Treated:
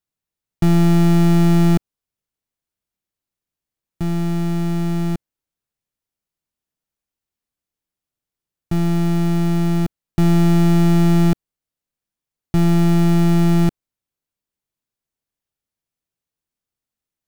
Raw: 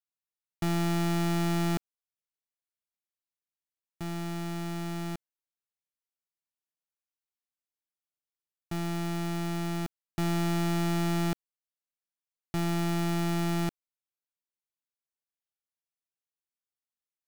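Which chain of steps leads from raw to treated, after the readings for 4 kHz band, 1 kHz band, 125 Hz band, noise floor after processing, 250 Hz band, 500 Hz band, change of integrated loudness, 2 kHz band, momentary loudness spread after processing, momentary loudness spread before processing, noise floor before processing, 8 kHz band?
+5.5 dB, +7.5 dB, +15.5 dB, below −85 dBFS, +14.5 dB, +11.0 dB, +14.0 dB, +6.0 dB, 9 LU, 9 LU, below −85 dBFS, +5.5 dB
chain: low-shelf EQ 380 Hz +12 dB
level +5.5 dB

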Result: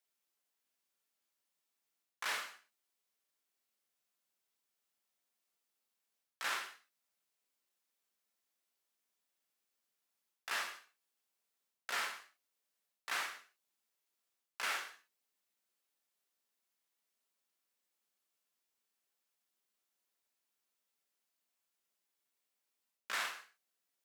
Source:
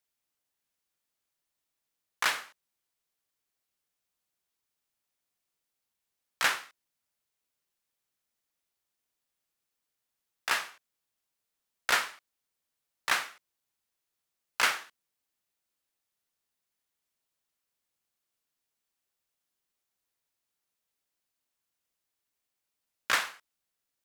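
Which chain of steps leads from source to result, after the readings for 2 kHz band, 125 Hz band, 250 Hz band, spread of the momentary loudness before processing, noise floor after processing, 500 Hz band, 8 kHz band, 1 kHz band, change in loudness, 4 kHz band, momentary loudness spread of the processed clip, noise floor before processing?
−9.5 dB, can't be measured, −11.0 dB, 13 LU, below −85 dBFS, −9.5 dB, −9.5 dB, −9.5 dB, −9.5 dB, −9.5 dB, 14 LU, −85 dBFS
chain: high-pass filter 210 Hz 12 dB per octave
reversed playback
downward compressor 6 to 1, threshold −34 dBFS, peak gain reduction 13.5 dB
reversed playback
reverb whose tail is shaped and stops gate 200 ms falling, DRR 4.5 dB
level −2.5 dB

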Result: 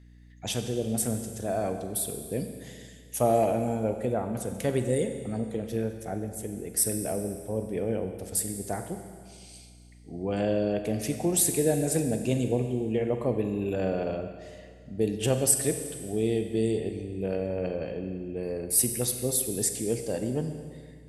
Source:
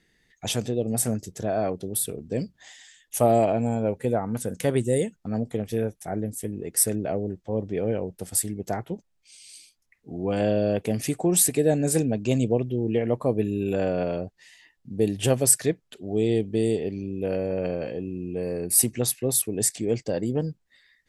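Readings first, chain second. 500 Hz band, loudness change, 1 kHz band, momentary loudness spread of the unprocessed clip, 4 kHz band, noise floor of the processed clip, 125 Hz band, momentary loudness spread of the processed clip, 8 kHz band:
−3.0 dB, −3.0 dB, −3.0 dB, 11 LU, −3.0 dB, −50 dBFS, −3.5 dB, 14 LU, −3.0 dB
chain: four-comb reverb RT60 1.9 s, combs from 32 ms, DRR 6.5 dB
mains hum 60 Hz, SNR 23 dB
level −4 dB

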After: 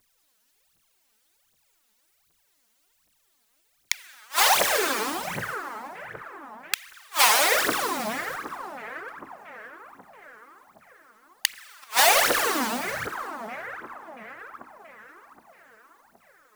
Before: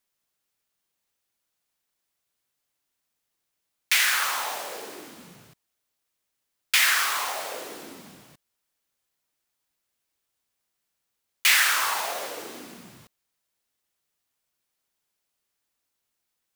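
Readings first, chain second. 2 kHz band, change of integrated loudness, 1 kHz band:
0.0 dB, −1.5 dB, +6.5 dB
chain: echo with a time of its own for lows and highs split 1,700 Hz, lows 679 ms, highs 199 ms, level −11.5 dB
phase shifter 1.3 Hz, delay 4.8 ms, feedback 80%
gate with flip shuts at −9 dBFS, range −38 dB
level +7 dB

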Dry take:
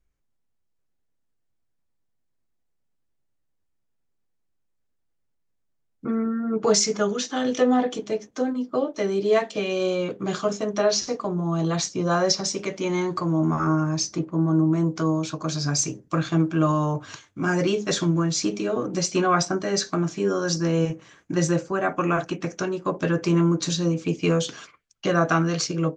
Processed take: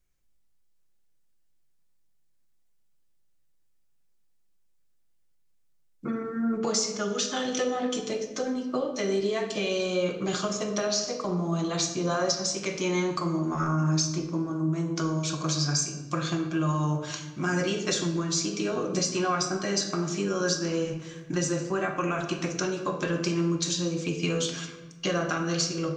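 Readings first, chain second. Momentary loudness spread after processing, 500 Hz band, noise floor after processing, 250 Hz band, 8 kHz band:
5 LU, −5.0 dB, −64 dBFS, −5.0 dB, −1.5 dB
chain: high-shelf EQ 2,500 Hz +10 dB
downward compressor, threshold −23 dBFS, peak gain reduction 13.5 dB
rectangular room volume 680 cubic metres, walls mixed, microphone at 0.93 metres
level −3 dB

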